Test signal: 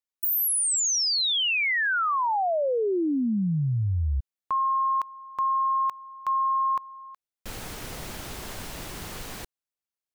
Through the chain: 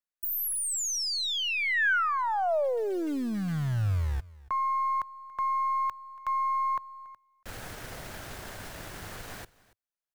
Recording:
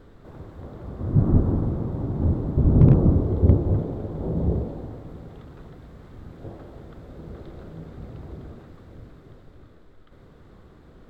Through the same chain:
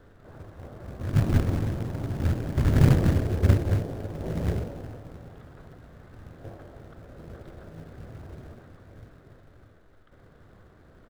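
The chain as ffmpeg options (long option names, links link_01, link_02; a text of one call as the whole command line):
ffmpeg -i in.wav -filter_complex "[0:a]aeval=exprs='if(lt(val(0),0),0.708*val(0),val(0))':channel_layout=same,acrossover=split=360[link_01][link_02];[link_01]acrusher=bits=4:mode=log:mix=0:aa=0.000001[link_03];[link_03][link_02]amix=inputs=2:normalize=0,equalizer=frequency=100:width_type=o:width=0.67:gain=5,equalizer=frequency=630:width_type=o:width=0.67:gain=5,equalizer=frequency=1600:width_type=o:width=0.67:gain=7,aecho=1:1:282:0.0841,volume=-5dB" out.wav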